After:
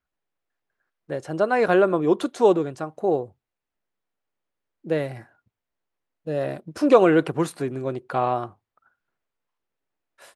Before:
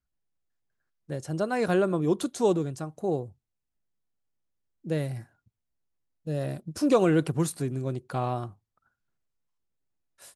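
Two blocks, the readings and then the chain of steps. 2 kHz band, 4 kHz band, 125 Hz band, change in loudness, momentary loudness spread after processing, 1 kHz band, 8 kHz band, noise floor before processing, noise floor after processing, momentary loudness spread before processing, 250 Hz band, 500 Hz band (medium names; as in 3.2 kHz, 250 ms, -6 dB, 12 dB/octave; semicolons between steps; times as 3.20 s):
+8.0 dB, +2.5 dB, -2.5 dB, +5.5 dB, 15 LU, +8.5 dB, no reading, -83 dBFS, under -85 dBFS, 14 LU, +3.5 dB, +7.0 dB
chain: tone controls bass -13 dB, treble -14 dB; trim +8.5 dB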